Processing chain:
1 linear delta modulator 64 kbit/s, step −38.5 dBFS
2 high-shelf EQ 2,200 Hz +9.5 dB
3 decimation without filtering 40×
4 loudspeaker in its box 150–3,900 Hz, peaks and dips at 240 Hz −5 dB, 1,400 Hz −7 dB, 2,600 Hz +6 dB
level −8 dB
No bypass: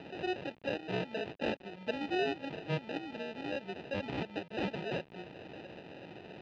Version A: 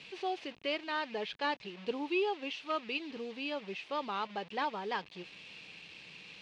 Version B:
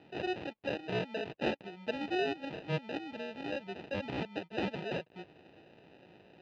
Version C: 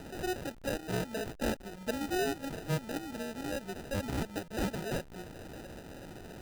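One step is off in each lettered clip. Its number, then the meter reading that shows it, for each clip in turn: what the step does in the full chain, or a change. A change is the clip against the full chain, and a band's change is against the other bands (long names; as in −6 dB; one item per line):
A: 3, change in crest factor −3.0 dB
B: 1, change in crest factor +1.5 dB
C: 4, 125 Hz band +4.0 dB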